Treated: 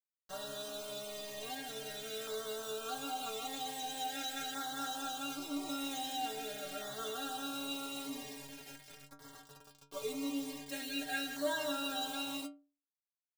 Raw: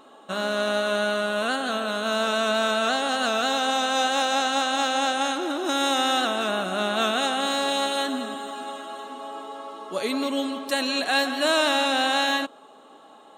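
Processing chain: bit-crush 5-bit; metallic resonator 140 Hz, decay 0.37 s, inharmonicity 0.008; LFO notch saw down 0.44 Hz 970–2700 Hz; gain -2.5 dB

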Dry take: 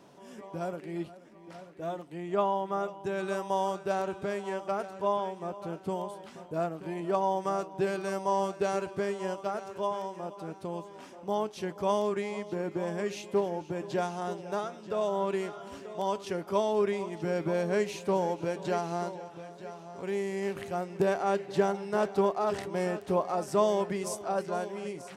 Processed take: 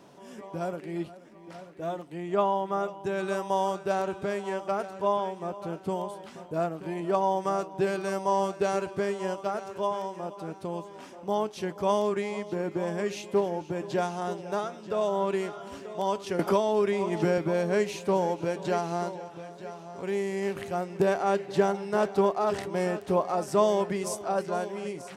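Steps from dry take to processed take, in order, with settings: 16.39–17.38 three-band squash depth 100%; gain +2.5 dB

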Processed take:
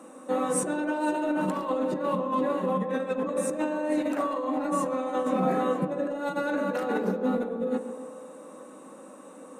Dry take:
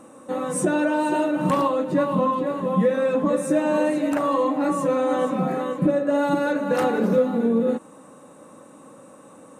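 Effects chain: HPF 200 Hz 24 dB/oct; negative-ratio compressor -24 dBFS, ratio -0.5; narrowing echo 0.135 s, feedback 70%, band-pass 540 Hz, level -8 dB; on a send at -8.5 dB: reverb RT60 0.85 s, pre-delay 3 ms; on the sum: gain -4 dB

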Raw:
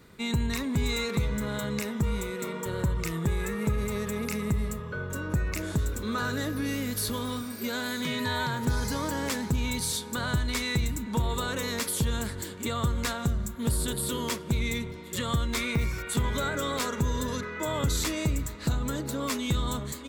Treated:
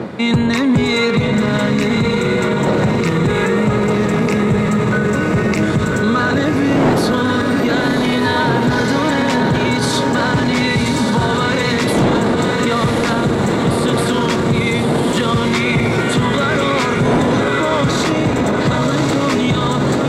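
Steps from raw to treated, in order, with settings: wind noise 450 Hz -35 dBFS; HPF 120 Hz 24 dB/oct; high shelf 4800 Hz -8 dB; hard clip -23.5 dBFS, distortion -13 dB; air absorption 59 m; diffused feedback echo 1.079 s, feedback 44%, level -4 dB; maximiser +27.5 dB; gain -6.5 dB

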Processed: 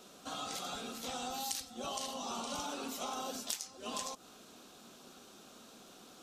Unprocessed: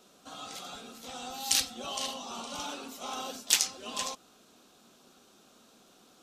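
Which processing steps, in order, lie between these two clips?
dynamic EQ 2700 Hz, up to -6 dB, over -46 dBFS, Q 0.85; compressor 10:1, threshold -40 dBFS, peak gain reduction 20 dB; gain +4 dB

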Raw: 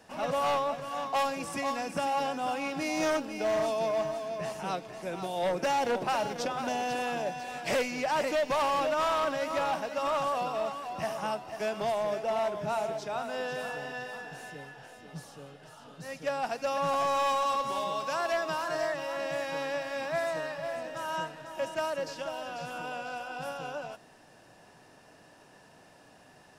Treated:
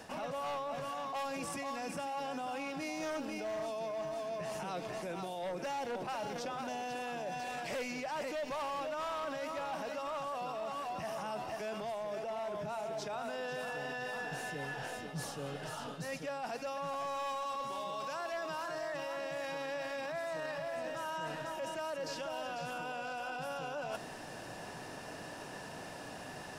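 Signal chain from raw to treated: limiter -33.5 dBFS, peak gain reduction 9 dB; reverse; compressor 6:1, threshold -48 dBFS, peak gain reduction 12 dB; reverse; gain +10.5 dB

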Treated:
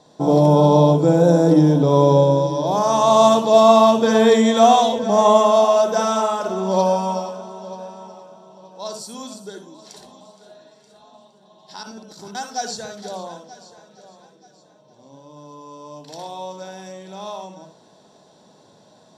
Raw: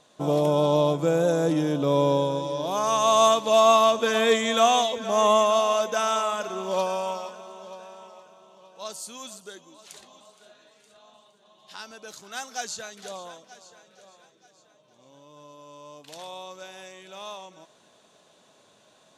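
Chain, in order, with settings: 11.83–12.35 negative-ratio compressor -47 dBFS, ratio -0.5; reverb RT60 0.20 s, pre-delay 57 ms, DRR 6 dB; gain -3 dB

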